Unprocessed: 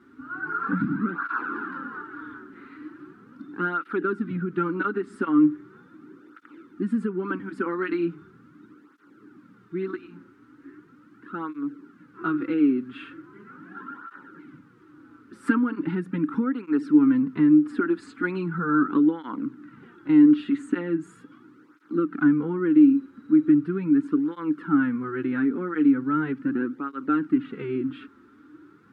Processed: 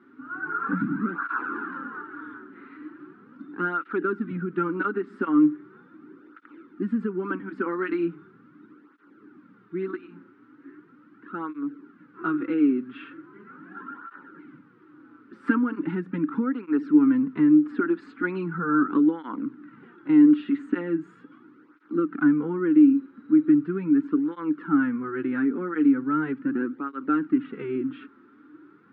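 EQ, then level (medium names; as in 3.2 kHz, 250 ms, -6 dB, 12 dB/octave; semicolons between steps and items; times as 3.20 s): band-pass 160–2900 Hz; 0.0 dB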